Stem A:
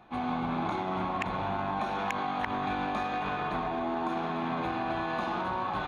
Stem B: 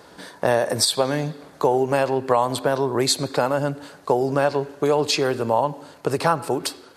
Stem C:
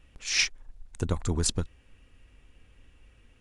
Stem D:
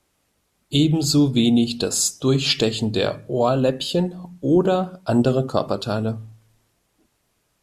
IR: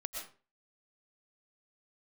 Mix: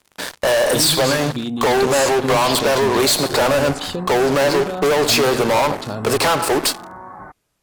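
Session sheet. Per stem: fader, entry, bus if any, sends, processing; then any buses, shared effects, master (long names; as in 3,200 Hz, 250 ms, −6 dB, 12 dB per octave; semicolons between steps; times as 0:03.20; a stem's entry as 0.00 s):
−4.0 dB, 1.45 s, no send, Butterworth low-pass 2,100 Hz 96 dB per octave
−0.5 dB, 0.00 s, no send, high-pass filter 480 Hz 6 dB per octave; fuzz pedal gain 33 dB, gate −41 dBFS
−9.5 dB, 2.30 s, no send, no processing
−2.0 dB, 0.00 s, no send, downward compressor, threshold −20 dBFS, peak gain reduction 8.5 dB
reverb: not used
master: no processing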